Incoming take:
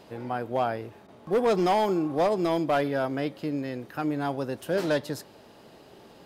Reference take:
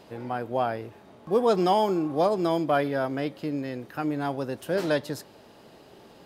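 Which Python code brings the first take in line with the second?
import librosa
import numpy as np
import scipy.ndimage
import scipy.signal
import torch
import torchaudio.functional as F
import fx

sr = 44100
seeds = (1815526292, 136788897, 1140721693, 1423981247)

y = fx.fix_declip(x, sr, threshold_db=-18.0)
y = fx.fix_interpolate(y, sr, at_s=(1.07,), length_ms=12.0)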